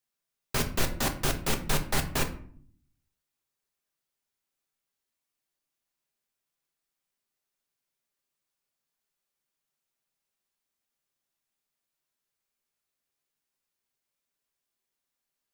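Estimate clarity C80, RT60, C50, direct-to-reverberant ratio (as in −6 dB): 16.0 dB, 0.55 s, 12.0 dB, 4.0 dB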